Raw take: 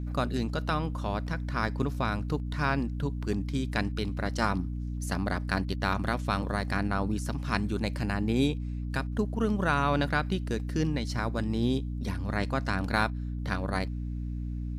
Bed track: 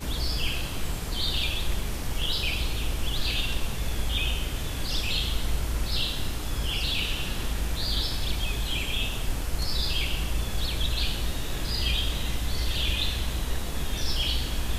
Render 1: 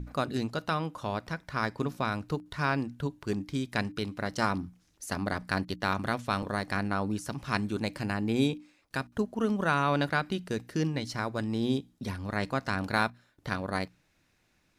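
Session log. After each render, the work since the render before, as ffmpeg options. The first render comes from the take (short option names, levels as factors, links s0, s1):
-af "bandreject=f=60:t=h:w=6,bandreject=f=120:t=h:w=6,bandreject=f=180:t=h:w=6,bandreject=f=240:t=h:w=6,bandreject=f=300:t=h:w=6"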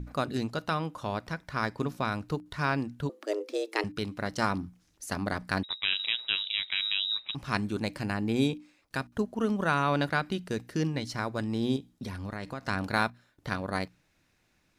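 -filter_complex "[0:a]asettb=1/sr,asplit=3[s0][s1][s2];[s0]atrim=end=3.094[s3];[s1]atrim=start=3.09:end=3.84,asetpts=PTS-STARTPTS,afade=t=in:d=0.004:c=qsin,afade=t=out:st=0.746:d=0.004:c=qsin,afreqshift=210[s4];[s2]atrim=start=3.836[s5];[s3][s4]acrossfade=d=0.004:c1=hsin:c2=qsin[s6];[s6][s5]acrossfade=d=0.004:c1=qsin:c2=hsin,asettb=1/sr,asplit=3[s7][s8][s9];[s7]atrim=end=5.634[s10];[s8]atrim=start=5.63:end=7.35,asetpts=PTS-STARTPTS,afade=t=in:d=0.004:c=qsin,afade=t=out:st=1.716:d=0.004:c=qsin,lowpass=f=3400:t=q:w=0.5098,lowpass=f=3400:t=q:w=0.6013,lowpass=f=3400:t=q:w=0.9,lowpass=f=3400:t=q:w=2.563,afreqshift=-4000[s11];[s9]atrim=start=7.346[s12];[s10][s11]acrossfade=d=0.004:c1=hsin:c2=qsin[s13];[s13][s12]acrossfade=d=0.004:c1=qsin:c2=hsin,asettb=1/sr,asplit=3[s14][s15][s16];[s14]atrim=end=11.764[s17];[s15]atrim=start=11.76:end=12.67,asetpts=PTS-STARTPTS,afade=t=in:d=0.004:c=qsin,afade=t=out:st=0.906:d=0.004:c=qsin,acompressor=threshold=0.0251:ratio=6:attack=3.2:release=140:knee=1:detection=peak[s18];[s16]atrim=start=12.666[s19];[s17][s18]acrossfade=d=0.004:c1=hsin:c2=qsin[s20];[s20][s19]acrossfade=d=0.004:c1=qsin:c2=hsin"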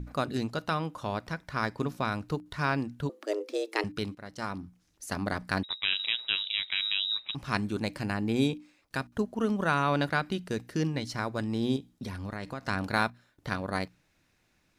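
-filter_complex "[0:a]asplit=2[s0][s1];[s0]atrim=end=4.15,asetpts=PTS-STARTPTS,afade=t=out:st=4.146:d=0.004:c=hsin:silence=0.199526[s2];[s1]atrim=start=4.15,asetpts=PTS-STARTPTS,afade=t=in:d=1.06:silence=0.199526[s3];[s2][s3]concat=n=2:v=0:a=1"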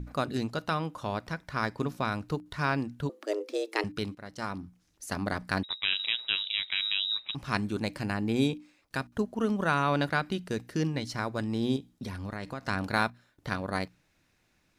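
-af anull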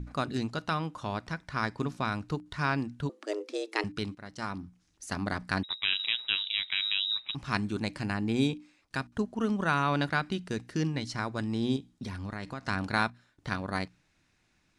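-af "lowpass=f=9700:w=0.5412,lowpass=f=9700:w=1.3066,equalizer=f=530:w=2:g=-4.5"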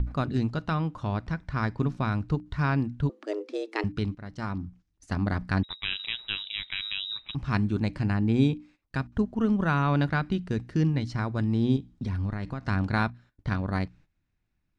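-af "aemphasis=mode=reproduction:type=bsi,agate=range=0.2:threshold=0.00282:ratio=16:detection=peak"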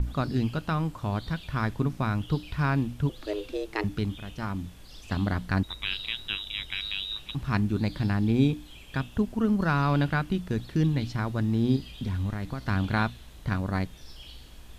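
-filter_complex "[1:a]volume=0.112[s0];[0:a][s0]amix=inputs=2:normalize=0"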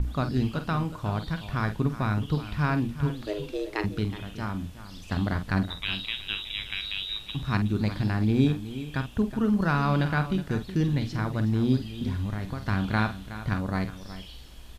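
-filter_complex "[0:a]asplit=2[s0][s1];[s1]adelay=47,volume=0.316[s2];[s0][s2]amix=inputs=2:normalize=0,aecho=1:1:369:0.211"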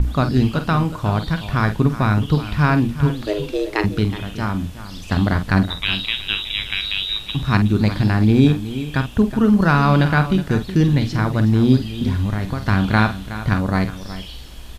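-af "volume=2.99,alimiter=limit=0.794:level=0:latency=1"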